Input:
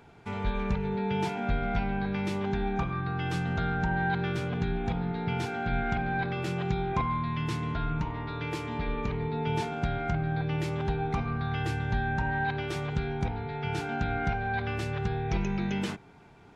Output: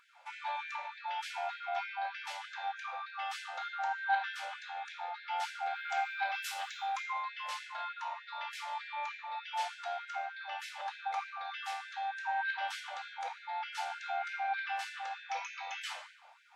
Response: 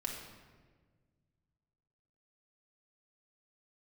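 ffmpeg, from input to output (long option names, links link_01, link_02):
-filter_complex "[0:a]asettb=1/sr,asplit=3[link_01][link_02][link_03];[link_01]atrim=end=5.764[link_04];[link_02]atrim=start=5.76:end=7,asetpts=PTS-STARTPTS,afade=type=in:duration=0.004:curve=qsin,afade=type=out:start_time=1.236:duration=0.004:curve=qsin,aemphasis=mode=production:type=bsi[link_05];[link_03]atrim=start=6.996[link_06];[link_04][link_05]acrossfade=duration=0.004:curve1=hsin:curve2=qsin[link_07];[link_07][link_06]acrossfade=duration=0.004:curve1=qsin:curve2=hsin[link_08];[1:a]atrim=start_sample=2205,asetrate=74970,aresample=44100[link_09];[link_08][link_09]afir=irnorm=-1:irlink=0,afftfilt=real='re*gte(b*sr/1024,490*pow(1500/490,0.5+0.5*sin(2*PI*3.3*pts/sr)))':imag='im*gte(b*sr/1024,490*pow(1500/490,0.5+0.5*sin(2*PI*3.3*pts/sr)))':win_size=1024:overlap=0.75,volume=3dB"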